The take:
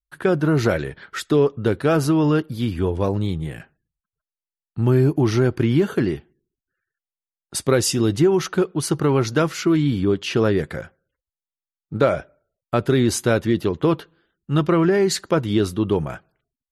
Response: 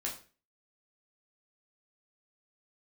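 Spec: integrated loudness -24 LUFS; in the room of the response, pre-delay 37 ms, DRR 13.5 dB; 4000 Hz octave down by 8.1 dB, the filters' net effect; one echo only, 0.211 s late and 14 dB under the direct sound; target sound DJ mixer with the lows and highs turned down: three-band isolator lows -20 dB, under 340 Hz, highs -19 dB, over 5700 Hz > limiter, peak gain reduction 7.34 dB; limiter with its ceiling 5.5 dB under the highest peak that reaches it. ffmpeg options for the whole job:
-filter_complex "[0:a]equalizer=f=4k:t=o:g=-8.5,alimiter=limit=-10.5dB:level=0:latency=1,aecho=1:1:211:0.2,asplit=2[a][b];[1:a]atrim=start_sample=2205,adelay=37[c];[b][c]afir=irnorm=-1:irlink=0,volume=-15dB[d];[a][d]amix=inputs=2:normalize=0,acrossover=split=340 5700:gain=0.1 1 0.112[e][f][g];[e][f][g]amix=inputs=3:normalize=0,volume=5dB,alimiter=limit=-13dB:level=0:latency=1"

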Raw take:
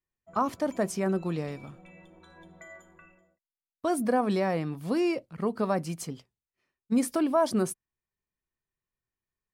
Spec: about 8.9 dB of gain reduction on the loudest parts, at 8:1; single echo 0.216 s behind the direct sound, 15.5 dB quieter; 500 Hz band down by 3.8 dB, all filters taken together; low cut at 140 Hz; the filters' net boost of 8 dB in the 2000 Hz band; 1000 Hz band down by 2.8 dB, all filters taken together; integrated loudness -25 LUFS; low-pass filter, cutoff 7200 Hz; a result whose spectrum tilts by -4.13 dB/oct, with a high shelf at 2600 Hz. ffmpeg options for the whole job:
-af "highpass=140,lowpass=7.2k,equalizer=f=500:t=o:g=-4.5,equalizer=f=1k:t=o:g=-5.5,equalizer=f=2k:t=o:g=8,highshelf=f=2.6k:g=8.5,acompressor=threshold=-31dB:ratio=8,aecho=1:1:216:0.168,volume=12dB"

